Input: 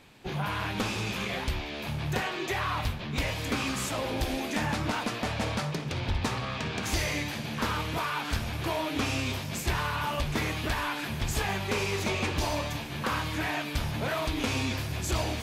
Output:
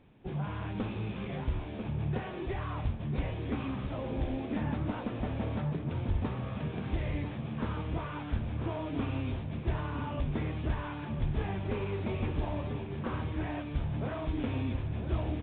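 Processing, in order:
tilt shelving filter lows +7.5 dB, about 770 Hz
slap from a distant wall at 170 metres, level −7 dB
downsampling to 8,000 Hz
level −8 dB

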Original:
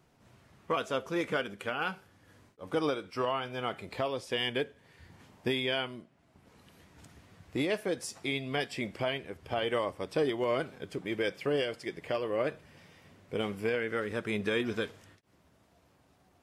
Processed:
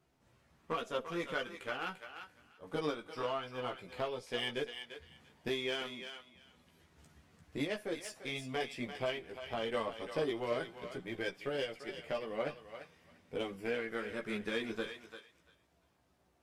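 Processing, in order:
harmonic generator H 3 −17 dB, 8 −36 dB, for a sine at −18.5 dBFS
multi-voice chorus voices 4, 0.14 Hz, delay 15 ms, depth 3 ms
feedback echo with a high-pass in the loop 344 ms, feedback 18%, high-pass 830 Hz, level −7.5 dB

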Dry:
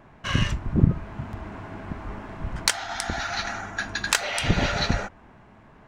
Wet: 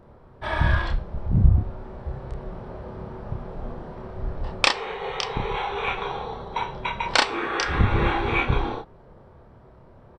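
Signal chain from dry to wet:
double-tracking delay 17 ms −3 dB
wrong playback speed 78 rpm record played at 45 rpm

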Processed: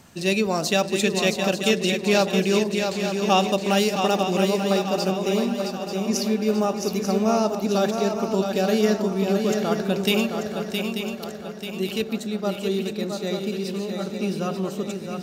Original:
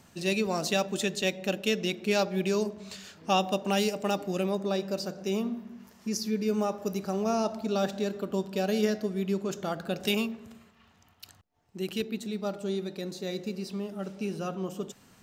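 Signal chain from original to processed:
feedback echo with a long and a short gap by turns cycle 888 ms, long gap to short 3 to 1, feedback 49%, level −6 dB
level +6 dB

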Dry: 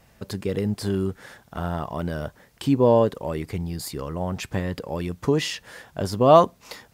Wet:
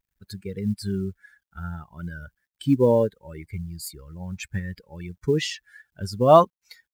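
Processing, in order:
spectral dynamics exaggerated over time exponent 2
log-companded quantiser 8 bits
level +2 dB

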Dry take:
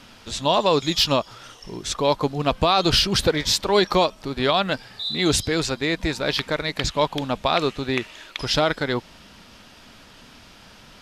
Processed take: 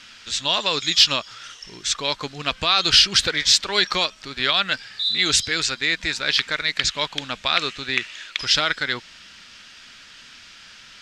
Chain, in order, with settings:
flat-topped bell 3,300 Hz +15 dB 3 octaves
level −9.5 dB

